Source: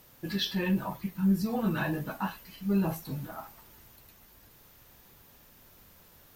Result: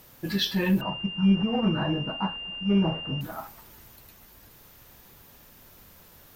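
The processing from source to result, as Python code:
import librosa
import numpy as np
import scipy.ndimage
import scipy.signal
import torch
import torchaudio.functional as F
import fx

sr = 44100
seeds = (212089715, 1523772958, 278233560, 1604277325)

y = fx.pwm(x, sr, carrier_hz=2800.0, at=(0.81, 3.21))
y = y * 10.0 ** (4.5 / 20.0)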